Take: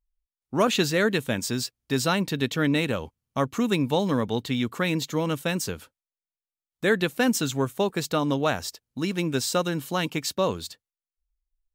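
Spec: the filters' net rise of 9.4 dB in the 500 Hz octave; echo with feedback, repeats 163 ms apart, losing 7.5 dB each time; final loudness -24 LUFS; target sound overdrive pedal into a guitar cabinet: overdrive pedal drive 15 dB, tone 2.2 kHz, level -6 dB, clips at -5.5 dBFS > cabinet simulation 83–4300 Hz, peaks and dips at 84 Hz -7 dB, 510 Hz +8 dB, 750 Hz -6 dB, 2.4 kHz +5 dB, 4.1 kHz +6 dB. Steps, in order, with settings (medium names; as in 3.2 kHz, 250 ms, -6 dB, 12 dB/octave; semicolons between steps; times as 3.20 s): peaking EQ 500 Hz +6 dB; feedback delay 163 ms, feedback 42%, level -7.5 dB; overdrive pedal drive 15 dB, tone 2.2 kHz, level -6 dB, clips at -5.5 dBFS; cabinet simulation 83–4300 Hz, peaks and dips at 84 Hz -7 dB, 510 Hz +8 dB, 750 Hz -6 dB, 2.4 kHz +5 dB, 4.1 kHz +6 dB; trim -7 dB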